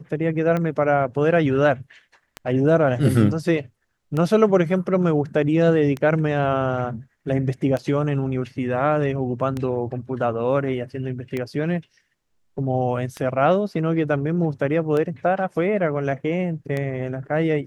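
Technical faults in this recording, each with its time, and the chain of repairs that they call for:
tick 33 1/3 rpm -14 dBFS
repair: de-click

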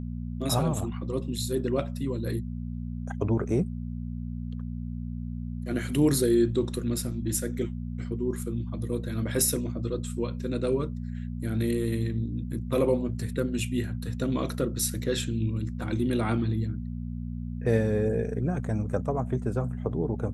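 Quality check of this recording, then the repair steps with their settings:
hum 60 Hz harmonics 4 -34 dBFS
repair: de-hum 60 Hz, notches 4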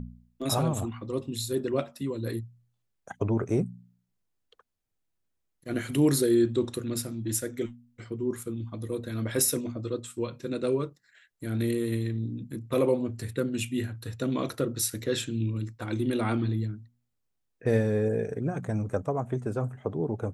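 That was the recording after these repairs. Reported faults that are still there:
nothing left

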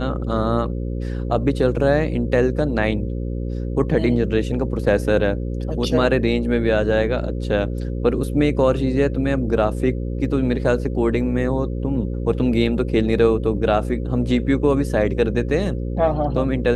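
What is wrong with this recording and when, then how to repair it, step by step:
buzz 60 Hz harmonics 9 -25 dBFS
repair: de-hum 60 Hz, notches 9

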